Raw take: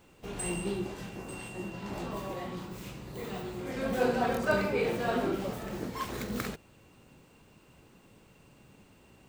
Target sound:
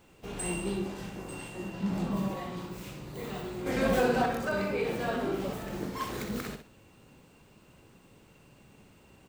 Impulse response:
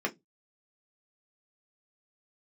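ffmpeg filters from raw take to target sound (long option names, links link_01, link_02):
-filter_complex "[0:a]asettb=1/sr,asplit=3[link_01][link_02][link_03];[link_01]atrim=end=1.794[link_04];[link_02]atrim=start=1.79:end=2.28,asetpts=PTS-STARTPTS,afade=type=in:duration=0.004:curve=qsin,afade=type=out:start_time=0.486:duration=0.004:curve=qsin,equalizer=frequency=190:width=2.4:gain=14[link_05];[link_03]atrim=start=2.276[link_06];[link_04][link_05]acrossfade=duration=0.004:curve1=hsin:curve2=qsin[link_07];[link_07][link_06]acrossfade=duration=0.004:curve1=qsin:curve2=hsin,alimiter=limit=-22dB:level=0:latency=1:release=201,asettb=1/sr,asplit=3[link_08][link_09][link_10];[link_08]atrim=end=3.664[link_11];[link_09]atrim=start=3.66:end=4.26,asetpts=PTS-STARTPTS,afade=type=in:duration=0.004:curve=qsin,afade=type=out:start_time=0.596:duration=0.004:curve=qsin,acontrast=49[link_12];[link_10]atrim=start=4.256[link_13];[link_11][link_12]acrossfade=duration=0.004:curve1=hsin:curve2=qsin[link_14];[link_14][link_13]acrossfade=duration=0.004:curve1=qsin:curve2=hsin,aecho=1:1:61|122|183:0.422|0.105|0.0264"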